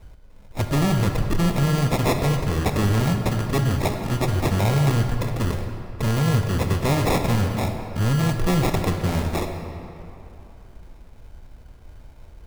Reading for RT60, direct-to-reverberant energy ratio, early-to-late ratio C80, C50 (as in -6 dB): 2.9 s, 5.0 dB, 6.5 dB, 5.5 dB